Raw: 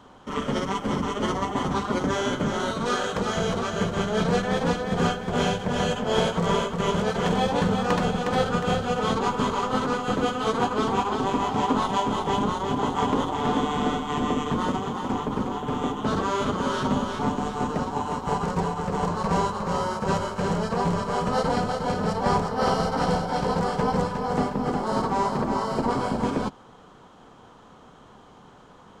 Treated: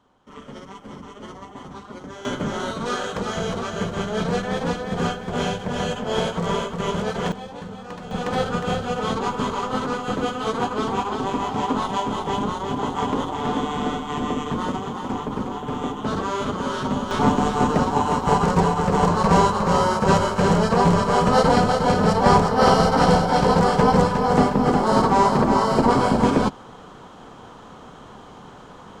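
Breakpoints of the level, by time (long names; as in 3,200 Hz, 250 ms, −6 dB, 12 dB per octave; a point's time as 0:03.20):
−12.5 dB
from 0:02.25 −0.5 dB
from 0:07.32 −12.5 dB
from 0:08.11 0 dB
from 0:17.11 +7.5 dB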